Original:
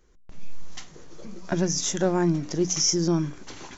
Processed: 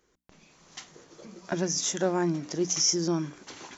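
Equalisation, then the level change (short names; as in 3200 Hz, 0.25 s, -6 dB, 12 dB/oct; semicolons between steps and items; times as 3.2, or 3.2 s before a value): HPF 260 Hz 6 dB/oct; -1.5 dB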